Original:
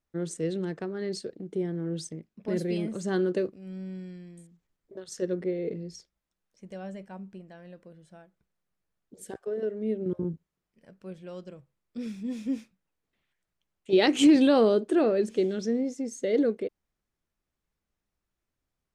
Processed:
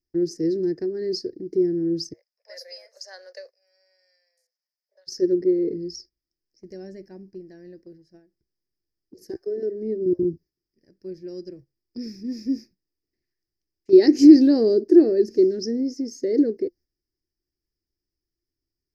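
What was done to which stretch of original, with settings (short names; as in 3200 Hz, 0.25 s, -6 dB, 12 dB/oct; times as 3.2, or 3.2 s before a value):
2.13–5.07 steep high-pass 520 Hz 96 dB/oct
whole clip: EQ curve 110 Hz 0 dB, 200 Hz -8 dB, 350 Hz +8 dB, 500 Hz -8 dB, 1300 Hz -22 dB, 1800 Hz -4 dB, 3400 Hz -25 dB, 5000 Hz +13 dB, 8400 Hz -22 dB, 12000 Hz -2 dB; gate -52 dBFS, range -7 dB; dynamic EQ 2600 Hz, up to -5 dB, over -49 dBFS, Q 0.77; gain +5 dB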